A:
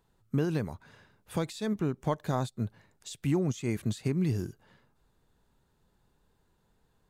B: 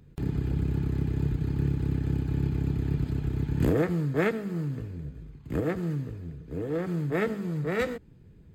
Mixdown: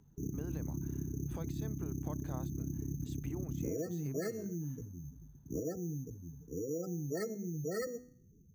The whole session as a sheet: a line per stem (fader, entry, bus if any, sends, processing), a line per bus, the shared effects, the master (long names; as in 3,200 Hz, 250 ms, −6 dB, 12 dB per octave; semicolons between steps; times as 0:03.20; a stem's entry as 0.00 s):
−5.5 dB, 0.00 s, no send, high-shelf EQ 2,200 Hz −11 dB; downward compressor 3 to 1, threshold −31 dBFS, peak gain reduction 6.5 dB
−1.5 dB, 0.00 s, no send, gate on every frequency bin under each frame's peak −15 dB strong; hum removal 124 Hz, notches 34; decimation without filtering 7×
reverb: not used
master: low-shelf EQ 190 Hz −11.5 dB; downward compressor, threshold −34 dBFS, peak gain reduction 9 dB